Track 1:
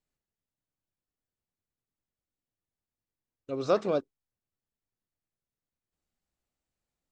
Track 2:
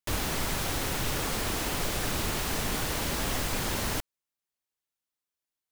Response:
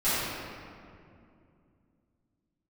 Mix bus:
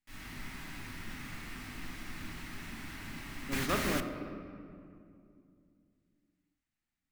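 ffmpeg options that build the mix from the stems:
-filter_complex "[0:a]volume=-6dB,asplit=3[a][b][c];[b]volume=-16.5dB[d];[1:a]volume=-7dB,asplit=2[e][f];[f]volume=-23.5dB[g];[c]apad=whole_len=252104[h];[e][h]sidechaingate=range=-33dB:threshold=-40dB:ratio=16:detection=peak[i];[2:a]atrim=start_sample=2205[j];[d][g]amix=inputs=2:normalize=0[k];[k][j]afir=irnorm=-1:irlink=0[l];[a][i][l]amix=inputs=3:normalize=0,equalizer=f=250:t=o:w=1:g=8,equalizer=f=500:t=o:w=1:g=-12,equalizer=f=2k:t=o:w=1:g=9"

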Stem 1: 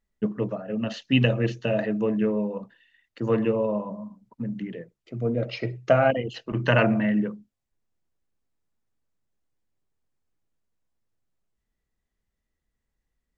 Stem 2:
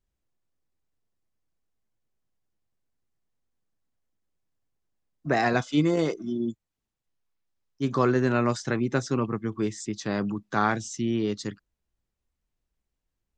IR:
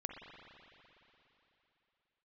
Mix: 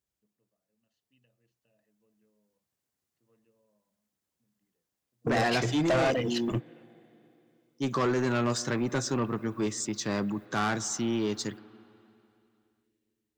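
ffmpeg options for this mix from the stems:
-filter_complex "[0:a]aemphasis=mode=production:type=50fm,volume=-4dB[a];[1:a]highpass=91,equalizer=f=150:t=o:w=2.1:g=-2,volume=-5dB,asplit=3[b][c][d];[c]volume=-14dB[e];[d]apad=whole_len=589707[f];[a][f]sidechaingate=range=-48dB:threshold=-44dB:ratio=16:detection=peak[g];[2:a]atrim=start_sample=2205[h];[e][h]afir=irnorm=-1:irlink=0[i];[g][b][i]amix=inputs=3:normalize=0,highshelf=f=5.1k:g=7.5,dynaudnorm=f=270:g=13:m=5dB,asoftclip=type=tanh:threshold=-21.5dB"

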